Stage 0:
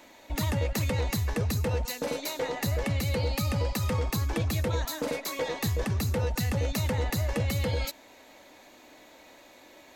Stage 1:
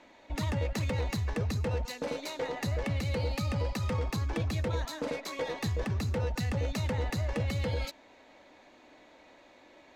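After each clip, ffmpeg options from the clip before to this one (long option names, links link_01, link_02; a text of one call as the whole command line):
ffmpeg -i in.wav -af "adynamicsmooth=sensitivity=6.5:basefreq=4600,volume=-3dB" out.wav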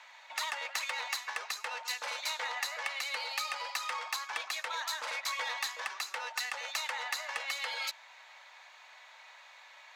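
ffmpeg -i in.wav -filter_complex "[0:a]highpass=frequency=950:width=0.5412,highpass=frequency=950:width=1.3066,asplit=2[link_01][link_02];[link_02]asoftclip=type=tanh:threshold=-39dB,volume=-7.5dB[link_03];[link_01][link_03]amix=inputs=2:normalize=0,volume=4dB" out.wav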